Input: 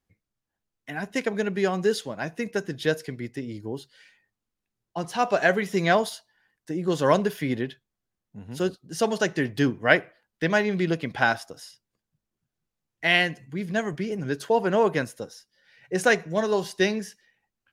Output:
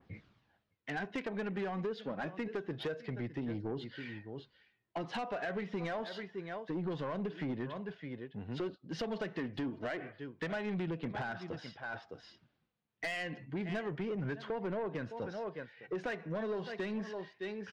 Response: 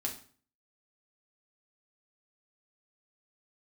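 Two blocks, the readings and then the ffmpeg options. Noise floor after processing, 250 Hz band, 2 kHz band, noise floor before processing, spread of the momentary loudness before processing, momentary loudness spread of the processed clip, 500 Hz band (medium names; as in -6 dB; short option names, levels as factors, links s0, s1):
-80 dBFS, -10.5 dB, -15.5 dB, under -85 dBFS, 13 LU, 7 LU, -13.5 dB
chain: -af "aecho=1:1:610:0.0841,aphaser=in_gain=1:out_gain=1:delay=4.6:decay=0.3:speed=0.27:type=triangular,highpass=82,areverse,acompressor=mode=upward:threshold=0.0251:ratio=2.5,areverse,lowpass=f=3900:w=0.5412,lowpass=f=3900:w=1.3066,alimiter=limit=0.2:level=0:latency=1:release=169,acompressor=threshold=0.0316:ratio=8,asoftclip=type=tanh:threshold=0.0282,adynamicequalizer=threshold=0.00158:dfrequency=2100:dqfactor=0.7:tfrequency=2100:tqfactor=0.7:attack=5:release=100:ratio=0.375:range=2.5:mode=cutabove:tftype=highshelf"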